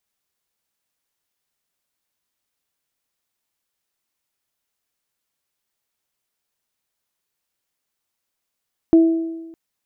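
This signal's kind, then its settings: additive tone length 0.61 s, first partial 328 Hz, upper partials -16.5 dB, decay 1.15 s, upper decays 0.95 s, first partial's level -6.5 dB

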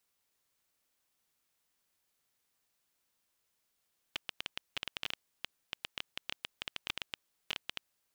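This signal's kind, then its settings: random clicks 11/s -18 dBFS 3.71 s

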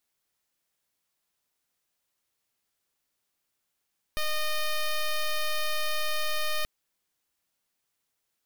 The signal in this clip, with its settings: pulse 613 Hz, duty 8% -27 dBFS 2.48 s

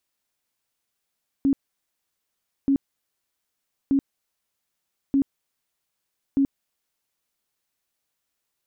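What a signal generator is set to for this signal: tone bursts 275 Hz, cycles 22, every 1.23 s, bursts 5, -16 dBFS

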